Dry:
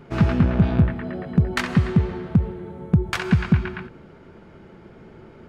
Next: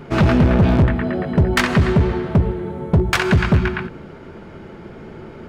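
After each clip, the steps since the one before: hum notches 60/120/180 Hz; hard clipper -18.5 dBFS, distortion -7 dB; trim +9 dB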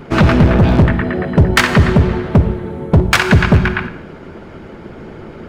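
harmonic-percussive split percussive +7 dB; Schroeder reverb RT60 0.78 s, DRR 11.5 dB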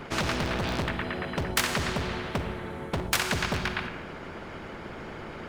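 spectrum-flattening compressor 2:1; trim -8 dB

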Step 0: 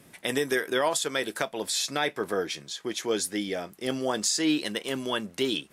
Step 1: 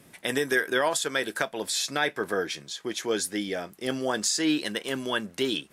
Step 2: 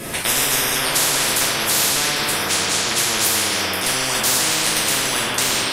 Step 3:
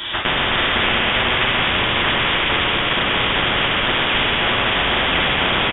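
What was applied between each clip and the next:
dynamic bell 1.6 kHz, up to +6 dB, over -48 dBFS, Q 4.7
reverberation RT60 1.9 s, pre-delay 3 ms, DRR -8.5 dB; spectrum-flattening compressor 10:1
delay 327 ms -6 dB; frequency inversion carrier 3.6 kHz; trim +4 dB

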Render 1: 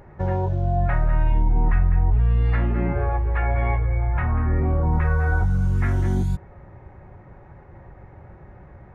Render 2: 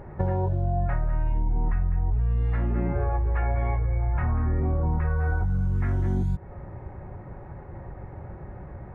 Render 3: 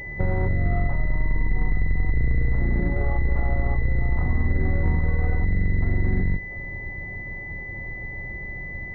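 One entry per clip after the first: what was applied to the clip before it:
treble shelf 2.2 kHz -11 dB; compression 5:1, threshold -27 dBFS, peak gain reduction 12 dB; trim +5 dB
octave divider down 2 oct, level +2 dB; class-D stage that switches slowly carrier 2 kHz

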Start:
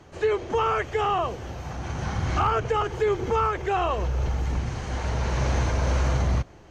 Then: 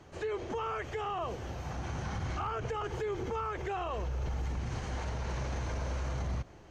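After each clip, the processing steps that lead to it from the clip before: peak limiter -23.5 dBFS, peak gain reduction 8.5 dB; trim -4.5 dB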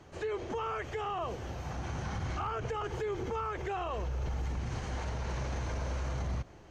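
no audible change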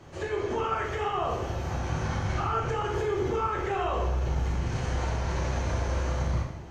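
plate-style reverb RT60 0.91 s, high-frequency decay 0.75×, DRR -2 dB; trim +2.5 dB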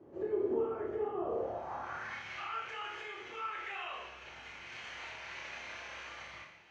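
band-pass sweep 360 Hz -> 2.5 kHz, 1.25–2.23 s; on a send: flutter echo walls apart 4.9 m, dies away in 0.26 s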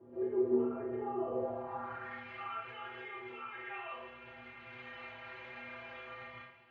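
distance through air 420 m; inharmonic resonator 120 Hz, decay 0.31 s, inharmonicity 0.008; trim +12.5 dB

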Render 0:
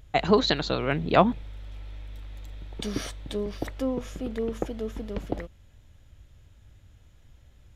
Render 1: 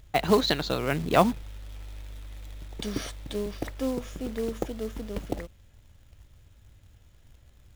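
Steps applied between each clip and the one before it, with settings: short-mantissa float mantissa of 2-bit; trim -1 dB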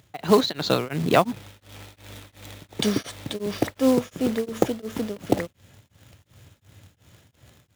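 high-pass 100 Hz 24 dB/octave; level rider gain up to 8 dB; tremolo of two beating tones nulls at 2.8 Hz; trim +3.5 dB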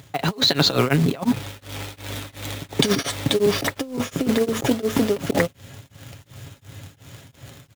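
comb 7.3 ms, depth 41%; compressor with a negative ratio -25 dBFS, ratio -0.5; trim +6 dB

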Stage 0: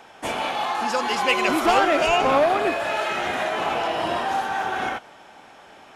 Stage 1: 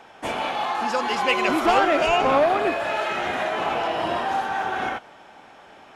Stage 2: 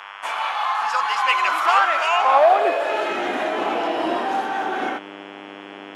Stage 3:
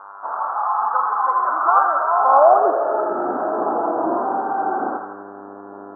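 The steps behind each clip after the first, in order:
treble shelf 5.4 kHz -7 dB
mains buzz 100 Hz, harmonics 34, -40 dBFS -2 dB/octave; high-pass sweep 1.1 kHz -> 290 Hz, 2.11–3.15 s
steep low-pass 1.4 kHz 72 dB/octave; thinning echo 83 ms, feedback 83%, high-pass 920 Hz, level -4 dB; trim +1.5 dB

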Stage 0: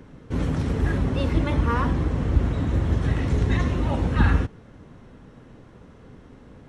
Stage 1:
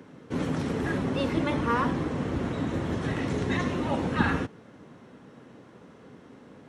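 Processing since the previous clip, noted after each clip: high-pass 180 Hz 12 dB/octave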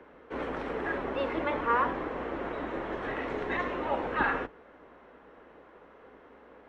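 octave divider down 2 oct, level +3 dB; three-band isolator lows -23 dB, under 370 Hz, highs -23 dB, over 2.8 kHz; trim +1.5 dB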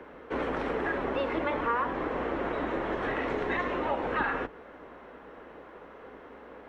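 compression 3:1, threshold -34 dBFS, peak gain reduction 9.5 dB; trim +6 dB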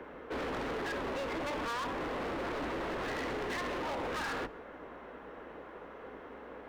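hard clipper -34.5 dBFS, distortion -6 dB; on a send at -22.5 dB: reverberation RT60 0.75 s, pre-delay 90 ms

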